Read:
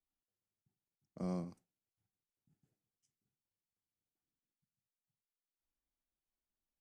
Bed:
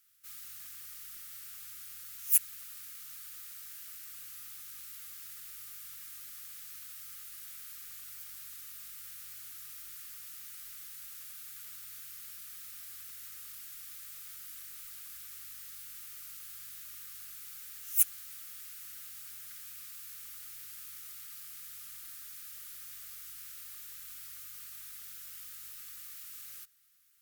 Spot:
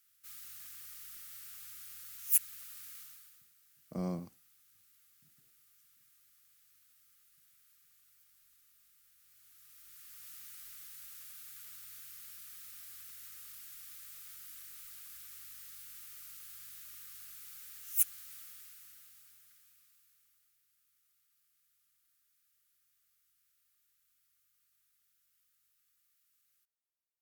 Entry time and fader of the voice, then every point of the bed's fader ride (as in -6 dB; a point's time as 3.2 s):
2.75 s, +2.5 dB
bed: 2.99 s -2.5 dB
3.52 s -20 dB
9.15 s -20 dB
10.29 s -3.5 dB
18.4 s -3.5 dB
20.63 s -28.5 dB